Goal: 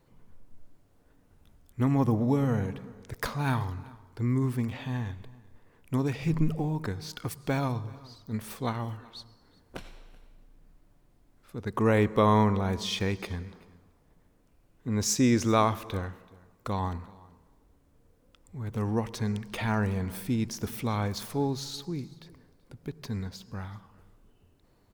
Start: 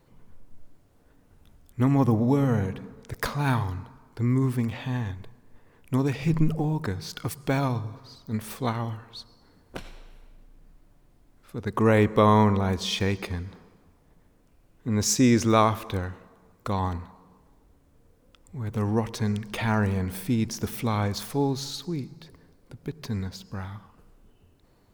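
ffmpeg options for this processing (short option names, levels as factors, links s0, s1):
-af "aecho=1:1:381:0.0668,volume=0.668"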